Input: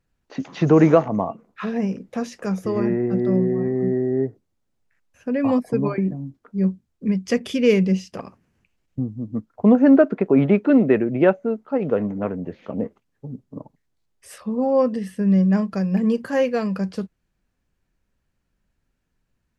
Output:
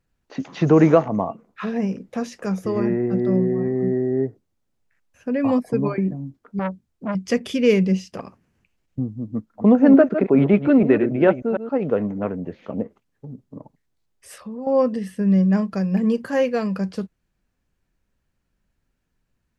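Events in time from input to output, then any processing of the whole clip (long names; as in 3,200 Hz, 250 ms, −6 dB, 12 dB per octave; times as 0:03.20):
0:06.59–0:07.15: saturating transformer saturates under 870 Hz
0:09.35–0:11.73: delay that plays each chunk backwards 148 ms, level −9 dB
0:12.82–0:14.67: downward compressor 3 to 1, threshold −32 dBFS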